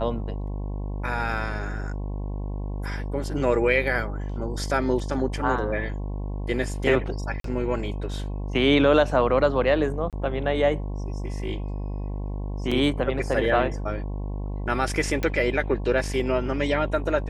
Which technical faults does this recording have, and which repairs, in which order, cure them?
buzz 50 Hz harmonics 22 -30 dBFS
7.40–7.44 s: dropout 43 ms
10.10–10.13 s: dropout 27 ms
12.71–12.72 s: dropout 5.4 ms
15.23 s: pop -13 dBFS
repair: de-click; de-hum 50 Hz, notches 22; interpolate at 7.40 s, 43 ms; interpolate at 10.10 s, 27 ms; interpolate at 12.71 s, 5.4 ms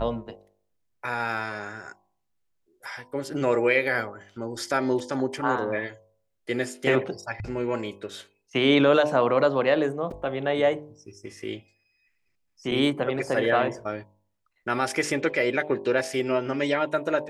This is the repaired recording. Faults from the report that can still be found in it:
nothing left

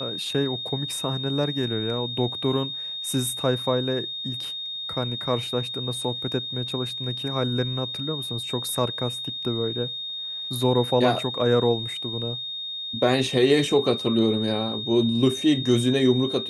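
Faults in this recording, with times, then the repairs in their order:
whine 3.7 kHz -30 dBFS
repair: band-stop 3.7 kHz, Q 30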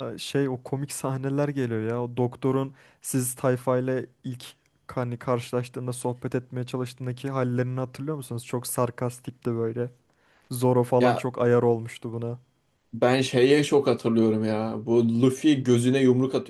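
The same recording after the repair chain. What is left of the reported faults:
nothing left

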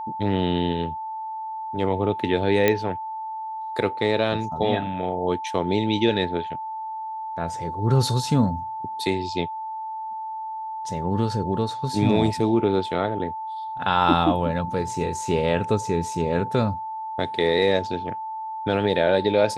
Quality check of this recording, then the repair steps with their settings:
whine 880 Hz -29 dBFS
2.68 s: pop -6 dBFS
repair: de-click; band-stop 880 Hz, Q 30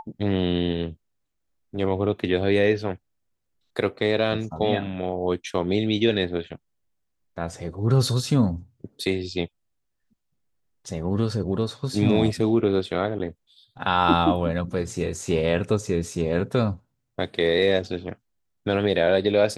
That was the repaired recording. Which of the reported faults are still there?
nothing left

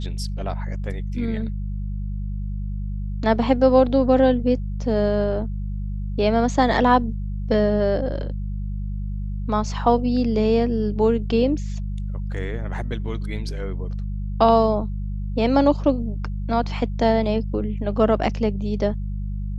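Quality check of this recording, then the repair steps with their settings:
hum 50 Hz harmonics 4 -27 dBFS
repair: de-hum 50 Hz, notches 4

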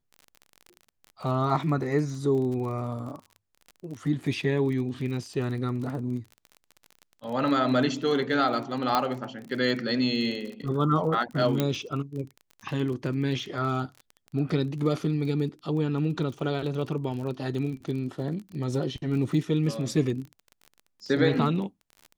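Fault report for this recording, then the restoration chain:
crackle 33 per s -35 dBFS
8.95 s: pop -10 dBFS
11.60 s: pop -11 dBFS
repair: de-click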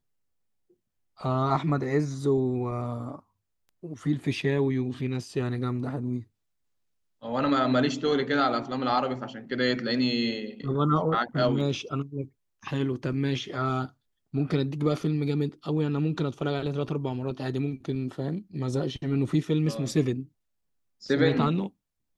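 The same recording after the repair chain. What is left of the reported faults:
11.60 s: pop

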